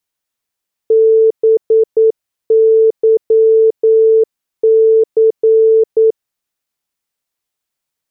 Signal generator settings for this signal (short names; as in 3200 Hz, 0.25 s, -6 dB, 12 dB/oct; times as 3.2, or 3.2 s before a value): Morse "BYC" 9 wpm 444 Hz -5.5 dBFS